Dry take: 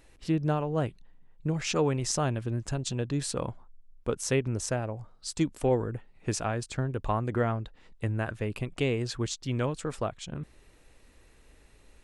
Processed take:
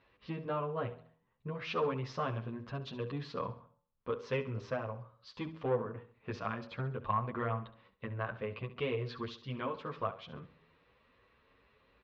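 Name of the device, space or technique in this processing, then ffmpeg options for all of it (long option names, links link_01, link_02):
barber-pole flanger into a guitar amplifier: -filter_complex "[0:a]lowpass=frequency=5700:width=0.5412,lowpass=frequency=5700:width=1.3066,bandreject=frequency=79.91:width_type=h:width=4,bandreject=frequency=159.82:width_type=h:width=4,bandreject=frequency=239.73:width_type=h:width=4,bandreject=frequency=319.64:width_type=h:width=4,bandreject=frequency=399.55:width_type=h:width=4,bandreject=frequency=479.46:width_type=h:width=4,bandreject=frequency=559.37:width_type=h:width=4,bandreject=frequency=639.28:width_type=h:width=4,bandreject=frequency=719.19:width_type=h:width=4,bandreject=frequency=799.1:width_type=h:width=4,bandreject=frequency=879.01:width_type=h:width=4,asplit=2[link_01][link_02];[link_02]adelay=8.9,afreqshift=2.7[link_03];[link_01][link_03]amix=inputs=2:normalize=1,asoftclip=type=tanh:threshold=-20.5dB,highpass=100,equalizer=frequency=150:width_type=q:width=4:gain=-4,equalizer=frequency=320:width_type=q:width=4:gain=-8,equalizer=frequency=500:width_type=q:width=4:gain=3,equalizer=frequency=780:width_type=q:width=4:gain=-4,equalizer=frequency=1100:width_type=q:width=4:gain=10,lowpass=frequency=3800:width=0.5412,lowpass=frequency=3800:width=1.3066,aecho=1:1:68|136|204|272:0.188|0.0772|0.0317|0.013,volume=-2.5dB"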